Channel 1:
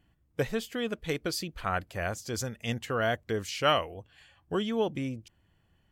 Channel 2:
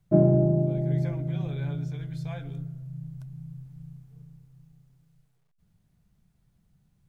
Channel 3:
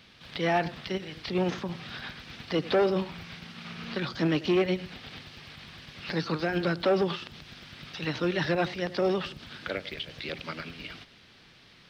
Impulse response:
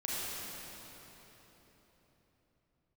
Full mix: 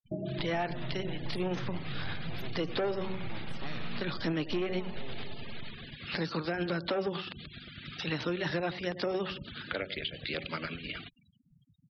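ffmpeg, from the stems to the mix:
-filter_complex "[0:a]aeval=exprs='abs(val(0))':channel_layout=same,lowshelf=frequency=390:gain=7.5,volume=-8.5dB,asplit=2[link_01][link_02];[link_02]volume=-10dB[link_03];[1:a]flanger=delay=20:depth=8:speed=2.5,volume=-0.5dB[link_04];[2:a]bandreject=frequency=188.6:width_type=h:width=4,bandreject=frequency=377.2:width_type=h:width=4,bandreject=frequency=565.8:width_type=h:width=4,bandreject=frequency=754.4:width_type=h:width=4,bandreject=frequency=943:width_type=h:width=4,bandreject=frequency=1131.6:width_type=h:width=4,adelay=50,volume=2dB[link_05];[link_01][link_04]amix=inputs=2:normalize=0,highshelf=frequency=7800:gain=4,acompressor=threshold=-35dB:ratio=4,volume=0dB[link_06];[3:a]atrim=start_sample=2205[link_07];[link_03][link_07]afir=irnorm=-1:irlink=0[link_08];[link_05][link_06][link_08]amix=inputs=3:normalize=0,afftfilt=real='re*gte(hypot(re,im),0.00794)':imag='im*gte(hypot(re,im),0.00794)':win_size=1024:overlap=0.75,acompressor=threshold=-31dB:ratio=3"

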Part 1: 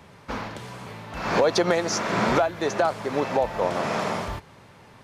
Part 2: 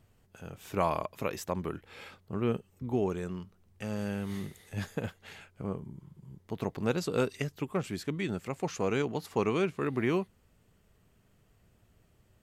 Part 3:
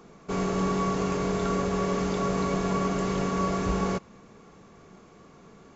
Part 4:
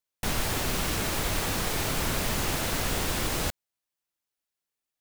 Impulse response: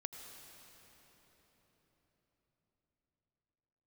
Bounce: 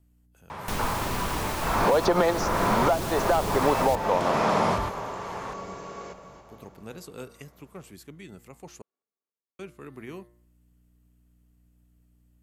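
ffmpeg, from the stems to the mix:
-filter_complex "[0:a]equalizer=frequency=1000:width_type=o:width=1.4:gain=12,acontrast=38,adelay=500,volume=0dB,asplit=2[link_01][link_02];[link_02]volume=-12.5dB[link_03];[1:a]aeval=exprs='val(0)+0.00355*(sin(2*PI*60*n/s)+sin(2*PI*2*60*n/s)/2+sin(2*PI*3*60*n/s)/3+sin(2*PI*4*60*n/s)/4+sin(2*PI*5*60*n/s)/5)':channel_layout=same,equalizer=frequency=12000:width_type=o:width=1.2:gain=13,bandreject=frequency=118:width_type=h:width=4,bandreject=frequency=236:width_type=h:width=4,bandreject=frequency=354:width_type=h:width=4,bandreject=frequency=472:width_type=h:width=4,bandreject=frequency=590:width_type=h:width=4,bandreject=frequency=708:width_type=h:width=4,bandreject=frequency=826:width_type=h:width=4,bandreject=frequency=944:width_type=h:width=4,bandreject=frequency=1062:width_type=h:width=4,bandreject=frequency=1180:width_type=h:width=4,bandreject=frequency=1298:width_type=h:width=4,bandreject=frequency=1416:width_type=h:width=4,bandreject=frequency=1534:width_type=h:width=4,bandreject=frequency=1652:width_type=h:width=4,bandreject=frequency=1770:width_type=h:width=4,bandreject=frequency=1888:width_type=h:width=4,bandreject=frequency=2006:width_type=h:width=4,bandreject=frequency=2124:width_type=h:width=4,volume=-11.5dB,asplit=3[link_04][link_05][link_06];[link_04]atrim=end=8.82,asetpts=PTS-STARTPTS,afade=type=out:start_time=8.816:duration=0.004:curve=hsin[link_07];[link_05]atrim=start=8.82:end=9.59,asetpts=PTS-STARTPTS,volume=0[link_08];[link_06]atrim=start=9.59,asetpts=PTS-STARTPTS,afade=type=in:duration=0.004:curve=hsin[link_09];[link_07][link_08][link_09]concat=n=3:v=0:a=1,asplit=2[link_10][link_11];[2:a]highpass=330,adelay=2150,volume=-13dB,asplit=3[link_12][link_13][link_14];[link_13]volume=-4.5dB[link_15];[link_14]volume=-8dB[link_16];[3:a]adelay=450,volume=-3.5dB,asplit=2[link_17][link_18];[link_18]volume=-7dB[link_19];[link_11]apad=whole_len=244041[link_20];[link_01][link_20]sidechaincompress=threshold=-47dB:ratio=8:attack=11:release=687[link_21];[4:a]atrim=start_sample=2205[link_22];[link_03][link_15][link_19]amix=inputs=3:normalize=0[link_23];[link_23][link_22]afir=irnorm=-1:irlink=0[link_24];[link_16]aecho=0:1:279|558|837|1116|1395|1674|1953:1|0.48|0.23|0.111|0.0531|0.0255|0.0122[link_25];[link_21][link_10][link_12][link_17][link_24][link_25]amix=inputs=6:normalize=0,acrossover=split=510|2400[link_26][link_27][link_28];[link_26]acompressor=threshold=-22dB:ratio=4[link_29];[link_27]acompressor=threshold=-27dB:ratio=4[link_30];[link_28]acompressor=threshold=-36dB:ratio=4[link_31];[link_29][link_30][link_31]amix=inputs=3:normalize=0"

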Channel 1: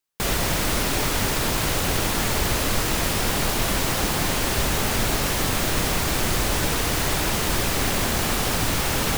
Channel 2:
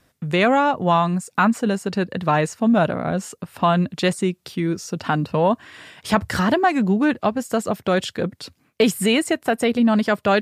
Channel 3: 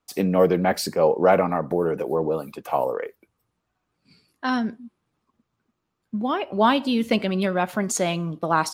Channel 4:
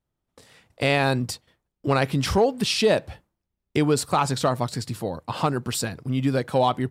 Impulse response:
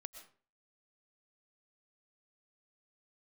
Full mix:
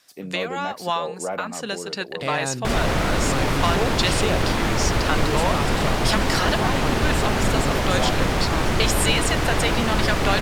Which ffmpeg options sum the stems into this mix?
-filter_complex "[0:a]aemphasis=mode=reproduction:type=75fm,adelay=2450,volume=2.5dB[link_01];[1:a]highpass=frequency=1200:poles=1,equalizer=frequency=5000:width=0.85:gain=8,acompressor=threshold=-20dB:ratio=6,volume=1.5dB[link_02];[2:a]volume=-12dB,asplit=2[link_03][link_04];[3:a]adelay=1400,volume=-7dB[link_05];[link_04]apad=whole_len=459453[link_06];[link_02][link_06]sidechaincompress=threshold=-33dB:ratio=8:attack=32:release=275[link_07];[link_01][link_07][link_03][link_05]amix=inputs=4:normalize=0"

